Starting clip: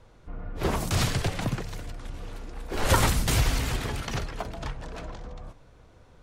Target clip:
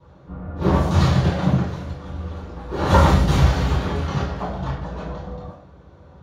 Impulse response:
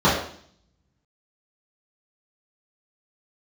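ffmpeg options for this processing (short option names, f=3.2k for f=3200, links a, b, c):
-filter_complex "[1:a]atrim=start_sample=2205[a];[0:a][a]afir=irnorm=-1:irlink=0,volume=-16.5dB"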